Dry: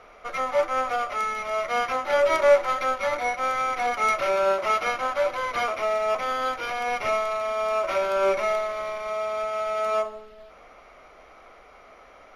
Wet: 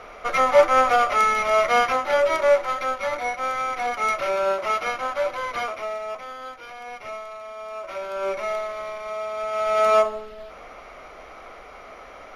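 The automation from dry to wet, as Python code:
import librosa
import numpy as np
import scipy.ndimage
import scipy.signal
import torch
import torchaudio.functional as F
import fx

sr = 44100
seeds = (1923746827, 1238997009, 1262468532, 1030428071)

y = fx.gain(x, sr, db=fx.line((1.63, 8.0), (2.33, -0.5), (5.51, -0.5), (6.34, -10.0), (7.7, -10.0), (8.6, -1.5), (9.36, -1.5), (9.81, 7.5)))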